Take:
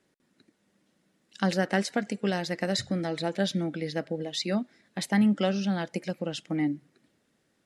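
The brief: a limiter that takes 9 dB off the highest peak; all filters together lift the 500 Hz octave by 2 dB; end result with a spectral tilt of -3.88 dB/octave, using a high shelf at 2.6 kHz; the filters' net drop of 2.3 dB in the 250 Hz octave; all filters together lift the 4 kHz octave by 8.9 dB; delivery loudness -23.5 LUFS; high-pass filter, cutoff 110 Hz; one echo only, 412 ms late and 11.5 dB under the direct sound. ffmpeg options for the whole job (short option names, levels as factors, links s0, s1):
-af "highpass=110,equalizer=f=250:t=o:g=-3.5,equalizer=f=500:t=o:g=3,highshelf=f=2600:g=6,equalizer=f=4000:t=o:g=5.5,alimiter=limit=0.168:level=0:latency=1,aecho=1:1:412:0.266,volume=1.78"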